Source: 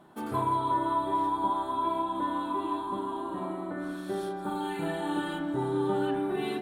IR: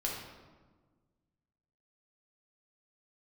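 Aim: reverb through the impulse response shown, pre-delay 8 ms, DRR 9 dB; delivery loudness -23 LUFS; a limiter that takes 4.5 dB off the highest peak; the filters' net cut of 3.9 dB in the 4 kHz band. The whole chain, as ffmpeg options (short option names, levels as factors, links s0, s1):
-filter_complex "[0:a]equalizer=f=4000:t=o:g=-5,alimiter=limit=0.0708:level=0:latency=1,asplit=2[s0][s1];[1:a]atrim=start_sample=2205,adelay=8[s2];[s1][s2]afir=irnorm=-1:irlink=0,volume=0.237[s3];[s0][s3]amix=inputs=2:normalize=0,volume=2.66"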